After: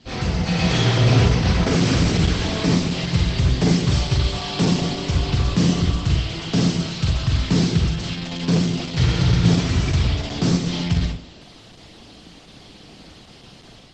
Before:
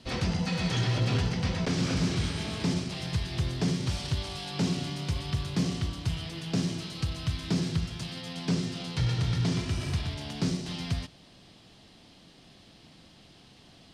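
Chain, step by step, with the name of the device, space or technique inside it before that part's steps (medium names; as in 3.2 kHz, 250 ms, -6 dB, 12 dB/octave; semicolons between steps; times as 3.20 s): speakerphone in a meeting room (reverberation RT60 0.45 s, pre-delay 38 ms, DRR -0.5 dB; level rider gain up to 6 dB; trim +2.5 dB; Opus 12 kbps 48 kHz)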